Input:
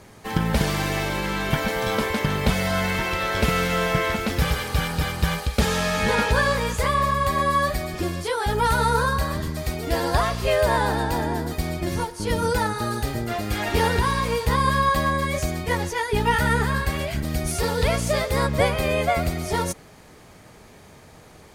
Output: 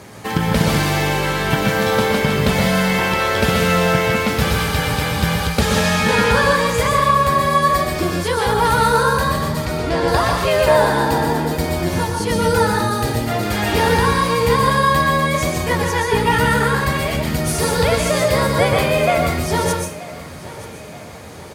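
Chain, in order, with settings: HPF 79 Hz; in parallel at +1 dB: compressor, threshold -32 dBFS, peak gain reduction 16.5 dB; 7.89–9.06 on the sum: companded quantiser 8-bit; 9.65–10.08 air absorption 89 m; feedback echo 0.929 s, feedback 48%, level -18 dB; on a send at -2 dB: reverb RT60 0.40 s, pre-delay 0.117 s; on the sum: gain +2 dB

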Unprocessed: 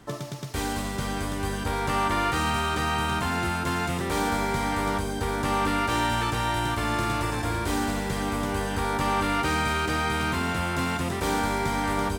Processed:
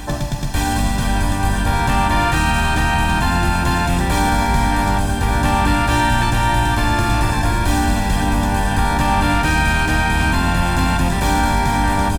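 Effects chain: octaver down 2 oct, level -1 dB; bell 320 Hz +3.5 dB 0.6 oct; comb 1.2 ms, depth 63%; in parallel at 0 dB: limiter -19 dBFS, peak gain reduction 7 dB; on the sum: reverse echo 0.574 s -14 dB; on a send at -17.5 dB: reverb RT60 3.4 s, pre-delay 23 ms; on the sum: gain +2.5 dB

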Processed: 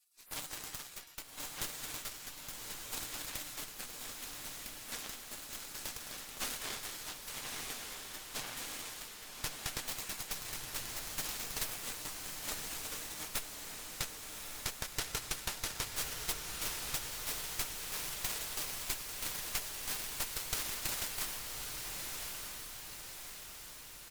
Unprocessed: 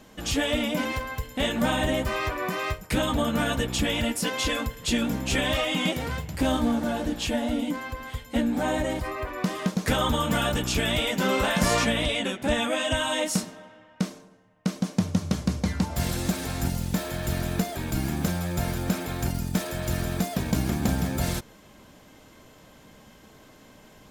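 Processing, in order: spectral gate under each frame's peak -30 dB weak; comb 6.6 ms, depth 42%; added harmonics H 3 -17 dB, 8 -10 dB, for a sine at -20.5 dBFS; 3.71–5.68 AM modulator 240 Hz, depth 80%; on a send: diffused feedback echo 1.188 s, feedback 55%, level -3.5 dB; on the sum: gain +1 dB

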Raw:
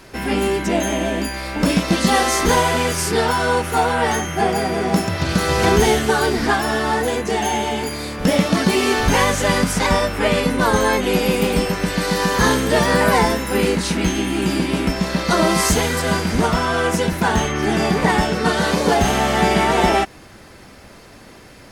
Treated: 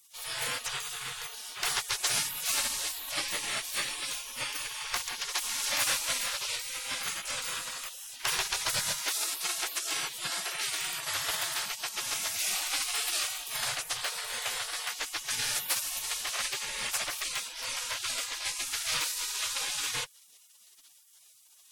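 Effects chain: spectral gate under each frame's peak -25 dB weak

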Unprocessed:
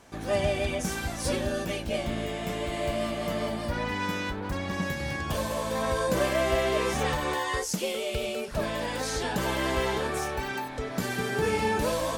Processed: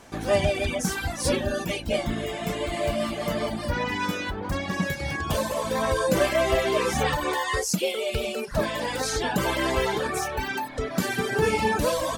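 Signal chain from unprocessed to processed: notches 60/120 Hz; reverb removal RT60 1.1 s; gain +5.5 dB

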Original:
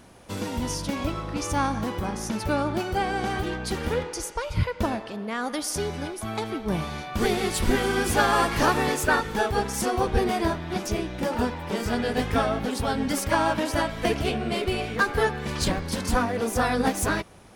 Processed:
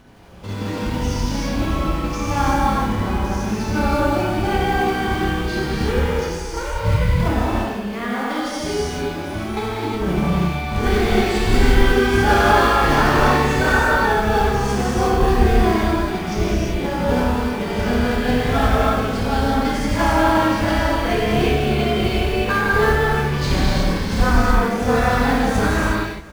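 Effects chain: LPF 4600 Hz 12 dB/oct; low shelf 87 Hz +8 dB; in parallel at -6.5 dB: companded quantiser 4-bit; on the sum: granular stretch 1.5×, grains 0.171 s; echo 0.465 s -22 dB; non-linear reverb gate 0.4 s flat, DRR -7 dB; gain -3.5 dB

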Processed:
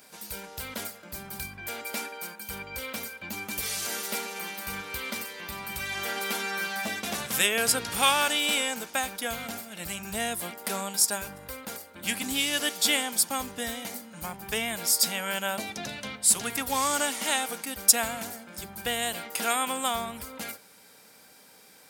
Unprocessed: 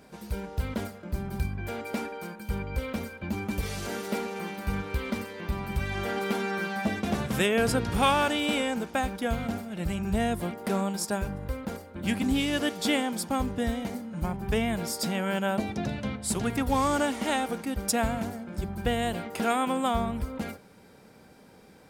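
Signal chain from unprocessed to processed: tilt +4 dB/oct; notch 370 Hz, Q 12; gain -1 dB

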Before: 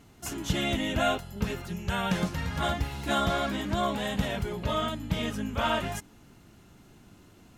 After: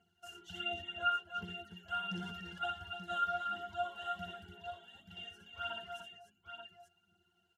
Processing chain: differentiator; reverb removal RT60 1.2 s; 0.74–1.37 high shelf 3900 Hz -9 dB; 4.7–5.17 compressor, threshold -50 dBFS, peak gain reduction 10 dB; phaser 1.4 Hz, delay 2.2 ms, feedback 66%; octave resonator F, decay 0.12 s; tapped delay 60/62/84/293/882 ms -17/-6.5/-12/-8.5/-8.5 dB; 2.03–2.66 sustainer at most 33 dB/s; gain +11.5 dB

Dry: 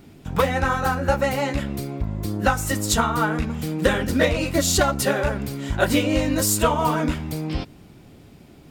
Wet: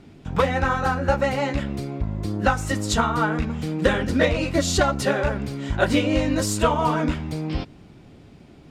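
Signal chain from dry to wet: air absorption 62 m

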